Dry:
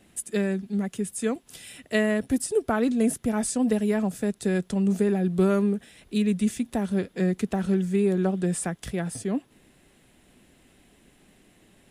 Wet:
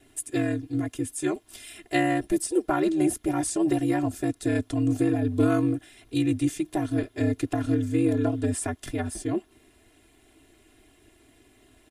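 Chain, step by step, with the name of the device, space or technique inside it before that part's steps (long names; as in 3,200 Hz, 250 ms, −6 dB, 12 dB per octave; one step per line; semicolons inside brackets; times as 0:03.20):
ring-modulated robot voice (ring modulation 76 Hz; comb filter 2.9 ms, depth 96%)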